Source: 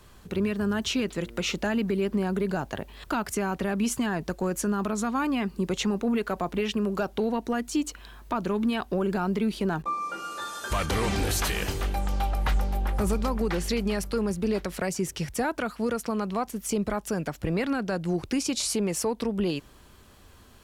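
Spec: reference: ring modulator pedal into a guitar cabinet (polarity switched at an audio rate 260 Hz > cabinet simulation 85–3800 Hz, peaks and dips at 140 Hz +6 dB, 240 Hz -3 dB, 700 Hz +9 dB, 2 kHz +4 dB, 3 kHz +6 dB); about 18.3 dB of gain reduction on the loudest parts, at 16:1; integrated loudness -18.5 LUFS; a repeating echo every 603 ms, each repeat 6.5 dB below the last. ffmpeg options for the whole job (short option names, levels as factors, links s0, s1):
-af "acompressor=threshold=0.0112:ratio=16,aecho=1:1:603|1206|1809|2412|3015|3618:0.473|0.222|0.105|0.0491|0.0231|0.0109,aeval=exprs='val(0)*sgn(sin(2*PI*260*n/s))':c=same,highpass=85,equalizer=f=140:t=q:w=4:g=6,equalizer=f=240:t=q:w=4:g=-3,equalizer=f=700:t=q:w=4:g=9,equalizer=f=2000:t=q:w=4:g=4,equalizer=f=3000:t=q:w=4:g=6,lowpass=f=3800:w=0.5412,lowpass=f=3800:w=1.3066,volume=12.6"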